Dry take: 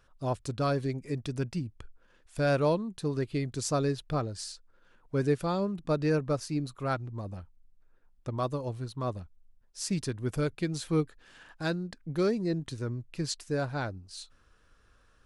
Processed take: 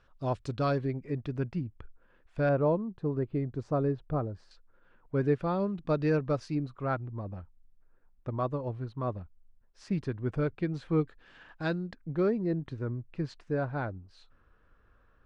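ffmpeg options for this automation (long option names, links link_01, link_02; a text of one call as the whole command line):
ffmpeg -i in.wav -af "asetnsamples=nb_out_samples=441:pad=0,asendcmd='0.78 lowpass f 2100;2.49 lowpass f 1100;4.51 lowpass f 2200;5.6 lowpass f 3500;6.55 lowpass f 2000;11.01 lowpass f 3300;11.95 lowpass f 1800',lowpass=4200" out.wav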